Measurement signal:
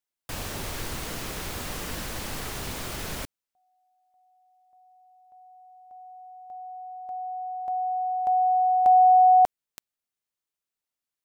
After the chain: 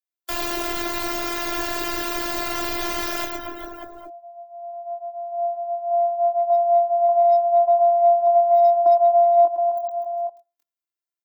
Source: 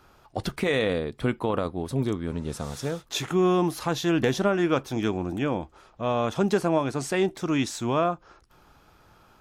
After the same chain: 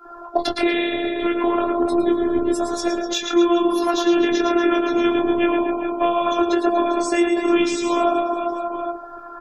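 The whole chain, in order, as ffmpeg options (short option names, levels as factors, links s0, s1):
-filter_complex "[0:a]bandreject=f=118.5:t=h:w=4,bandreject=f=237:t=h:w=4,bandreject=f=355.5:t=h:w=4,bandreject=f=474:t=h:w=4,bandreject=f=592.5:t=h:w=4,bandreject=f=711:t=h:w=4,bandreject=f=829.5:t=h:w=4,bandreject=f=948:t=h:w=4,bandreject=f=1066.5:t=h:w=4,bandreject=f=1185:t=h:w=4,bandreject=f=1303.5:t=h:w=4,bandreject=f=1422:t=h:w=4,bandreject=f=1540.5:t=h:w=4,bandreject=f=1659:t=h:w=4,flanger=delay=20:depth=4.5:speed=0.75,bass=f=250:g=-12,treble=f=4000:g=10,acrossover=split=350|1600[s0][s1][s2];[s1]acompressor=threshold=0.01:ratio=2.5:attack=71:release=170:knee=2.83:detection=peak[s3];[s0][s3][s2]amix=inputs=3:normalize=0,aecho=1:1:110|242|400.4|590.5|818.6:0.631|0.398|0.251|0.158|0.1,acrossover=split=130|1400[s4][s5][s6];[s5]acrusher=bits=4:mode=log:mix=0:aa=0.000001[s7];[s4][s7][s6]amix=inputs=3:normalize=0,acompressor=threshold=0.00794:ratio=6:attack=37:release=642:knee=6:detection=rms,equalizer=f=9300:w=0.35:g=-13,afftdn=nr=30:nf=-59,afftfilt=real='hypot(re,im)*cos(PI*b)':imag='0':win_size=512:overlap=0.75,alimiter=level_in=56.2:limit=0.891:release=50:level=0:latency=1,volume=0.562" -ar 48000 -c:a aac -b:a 192k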